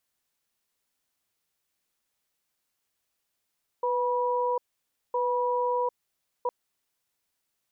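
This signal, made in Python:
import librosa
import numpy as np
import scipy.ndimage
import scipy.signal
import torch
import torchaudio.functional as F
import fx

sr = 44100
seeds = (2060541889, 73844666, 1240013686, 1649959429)

y = fx.cadence(sr, length_s=2.66, low_hz=495.0, high_hz=973.0, on_s=0.75, off_s=0.56, level_db=-26.5)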